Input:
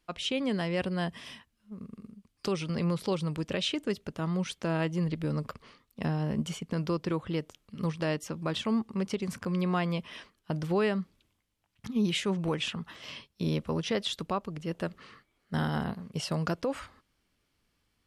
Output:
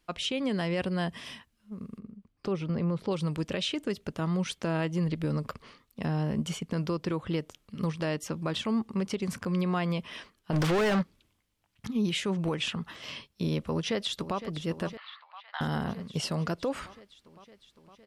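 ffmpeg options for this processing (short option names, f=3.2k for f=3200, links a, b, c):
-filter_complex "[0:a]asettb=1/sr,asplit=3[a][b][c];[a]atrim=end=1.994[d];[b]atrim=start=1.99:end=3.11,asetpts=PTS-STARTPTS,afade=t=in:d=0.004:c=qsin,afade=t=out:st=1.116:d=0.004:c=qsin,lowpass=f=1.1k:p=1[e];[c]atrim=start=3.106[f];[d][e]acrossfade=d=0.004:c1=hsin:c2=qsin[g];[g][f]acrossfade=d=0.004:c1=qsin:c2=hsin,asplit=3[h][i][j];[h]afade=t=out:st=10.52:d=0.02[k];[i]asplit=2[l][m];[m]highpass=f=720:p=1,volume=31dB,asoftclip=type=tanh:threshold=-19dB[n];[l][n]amix=inputs=2:normalize=0,lowpass=f=3.4k:p=1,volume=-6dB,afade=t=in:st=10.52:d=0.02,afade=t=out:st=11.01:d=0.02[o];[j]afade=t=in:st=11.01:d=0.02[p];[k][o][p]amix=inputs=3:normalize=0,asplit=2[q][r];[r]afade=t=in:st=13.66:d=0.01,afade=t=out:st=14.38:d=0.01,aecho=0:1:510|1020|1530|2040|2550|3060|3570|4080|4590|5100|5610:0.199526|0.149645|0.112234|0.0841751|0.0631313|0.0473485|0.0355114|0.0266335|0.0199752|0.0149814|0.011236[s];[q][s]amix=inputs=2:normalize=0,asettb=1/sr,asplit=3[t][u][v];[t]atrim=end=14.974[w];[u]atrim=start=14.97:end=15.61,asetpts=PTS-STARTPTS,afade=t=in:d=0.004:c=qsin,afade=t=out:st=0.636:d=0.004:c=qsin,asuperpass=centerf=1800:order=12:qfactor=0.52[x];[v]atrim=start=15.606[y];[w][x]acrossfade=d=0.004:c1=hsin:c2=qsin[z];[z][y]acrossfade=d=0.004:c1=qsin:c2=hsin,alimiter=limit=-23.5dB:level=0:latency=1:release=114,volume=2.5dB"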